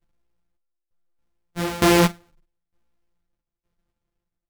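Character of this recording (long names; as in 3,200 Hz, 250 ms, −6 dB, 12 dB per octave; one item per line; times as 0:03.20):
a buzz of ramps at a fixed pitch in blocks of 256 samples
tremolo saw down 1.1 Hz, depth 90%
a shimmering, thickened sound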